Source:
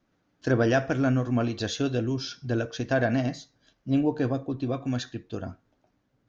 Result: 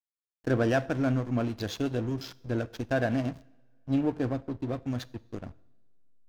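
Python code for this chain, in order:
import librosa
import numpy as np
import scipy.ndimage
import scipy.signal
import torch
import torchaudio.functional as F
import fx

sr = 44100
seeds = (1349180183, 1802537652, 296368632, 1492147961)

y = fx.backlash(x, sr, play_db=-30.0)
y = fx.rev_double_slope(y, sr, seeds[0], early_s=0.77, late_s=2.5, knee_db=-19, drr_db=19.0)
y = y * librosa.db_to_amplitude(-2.5)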